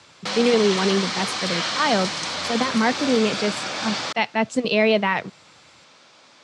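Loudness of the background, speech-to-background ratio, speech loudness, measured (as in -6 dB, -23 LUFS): -25.5 LUFS, 3.0 dB, -22.5 LUFS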